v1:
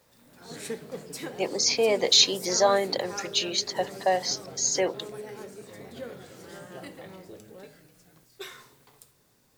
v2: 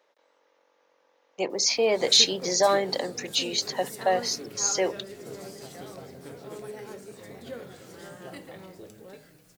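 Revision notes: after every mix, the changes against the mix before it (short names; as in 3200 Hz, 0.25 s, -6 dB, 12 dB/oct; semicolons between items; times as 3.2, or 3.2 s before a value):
background: entry +1.50 s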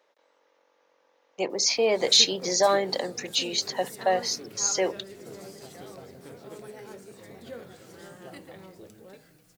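reverb: off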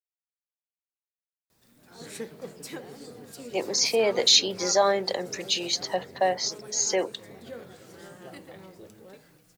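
speech: entry +2.15 s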